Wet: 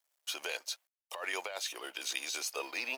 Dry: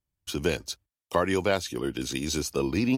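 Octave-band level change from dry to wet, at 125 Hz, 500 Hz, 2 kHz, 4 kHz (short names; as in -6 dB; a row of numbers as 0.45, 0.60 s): under -40 dB, -16.5 dB, -3.5 dB, -3.0 dB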